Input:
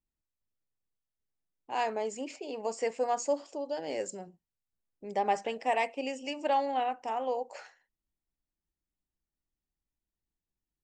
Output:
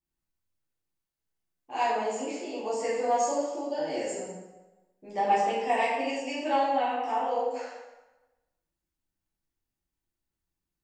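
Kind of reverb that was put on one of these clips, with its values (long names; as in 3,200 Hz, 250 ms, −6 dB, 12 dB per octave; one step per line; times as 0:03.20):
dense smooth reverb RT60 1.1 s, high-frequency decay 0.75×, DRR −10 dB
level −6 dB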